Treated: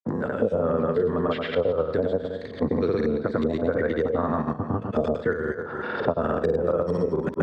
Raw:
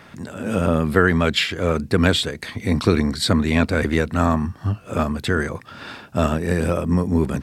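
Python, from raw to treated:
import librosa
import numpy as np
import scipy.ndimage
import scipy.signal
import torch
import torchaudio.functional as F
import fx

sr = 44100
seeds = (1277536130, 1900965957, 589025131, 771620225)

p1 = fx.filter_lfo_lowpass(x, sr, shape='saw_up', hz=2.0, low_hz=440.0, high_hz=4400.0, q=1.7)
p2 = fx.level_steps(p1, sr, step_db=22)
p3 = fx.highpass(p2, sr, hz=140.0, slope=6)
p4 = fx.peak_eq(p3, sr, hz=480.0, db=10.5, octaves=0.57)
p5 = p4 + fx.echo_feedback(p4, sr, ms=104, feedback_pct=44, wet_db=-8.0, dry=0)
p6 = fx.granulator(p5, sr, seeds[0], grain_ms=100.0, per_s=20.0, spray_ms=100.0, spread_st=0)
p7 = fx.peak_eq(p6, sr, hz=2500.0, db=-12.5, octaves=0.53)
p8 = fx.band_squash(p7, sr, depth_pct=100)
y = p8 * librosa.db_to_amplitude(-3.0)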